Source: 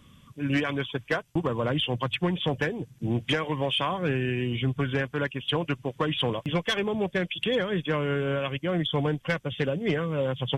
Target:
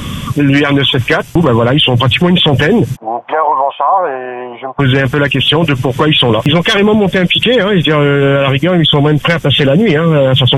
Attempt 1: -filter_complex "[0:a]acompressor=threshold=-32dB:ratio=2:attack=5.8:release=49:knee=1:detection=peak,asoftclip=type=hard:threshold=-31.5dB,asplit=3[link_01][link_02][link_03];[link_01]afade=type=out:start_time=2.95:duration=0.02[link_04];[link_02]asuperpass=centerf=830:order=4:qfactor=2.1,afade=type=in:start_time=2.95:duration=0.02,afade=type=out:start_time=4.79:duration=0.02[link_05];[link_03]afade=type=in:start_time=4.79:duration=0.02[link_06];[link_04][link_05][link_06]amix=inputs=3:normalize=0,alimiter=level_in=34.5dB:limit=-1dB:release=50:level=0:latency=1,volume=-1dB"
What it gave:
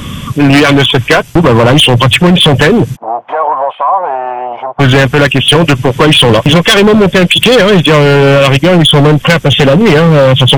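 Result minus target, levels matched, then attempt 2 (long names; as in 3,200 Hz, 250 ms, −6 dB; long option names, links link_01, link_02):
hard clipping: distortion +37 dB
-filter_complex "[0:a]acompressor=threshold=-32dB:ratio=2:attack=5.8:release=49:knee=1:detection=peak,asoftclip=type=hard:threshold=-21dB,asplit=3[link_01][link_02][link_03];[link_01]afade=type=out:start_time=2.95:duration=0.02[link_04];[link_02]asuperpass=centerf=830:order=4:qfactor=2.1,afade=type=in:start_time=2.95:duration=0.02,afade=type=out:start_time=4.79:duration=0.02[link_05];[link_03]afade=type=in:start_time=4.79:duration=0.02[link_06];[link_04][link_05][link_06]amix=inputs=3:normalize=0,alimiter=level_in=34.5dB:limit=-1dB:release=50:level=0:latency=1,volume=-1dB"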